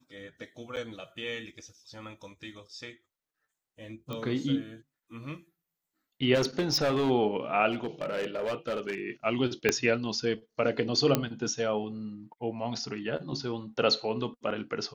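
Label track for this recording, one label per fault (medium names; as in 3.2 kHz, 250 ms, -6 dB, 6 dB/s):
0.760000	0.770000	dropout 8 ms
4.130000	4.130000	pop -23 dBFS
6.340000	7.110000	clipped -22.5 dBFS
7.710000	9.000000	clipped -27.5 dBFS
9.690000	9.690000	pop -9 dBFS
11.150000	11.150000	pop -9 dBFS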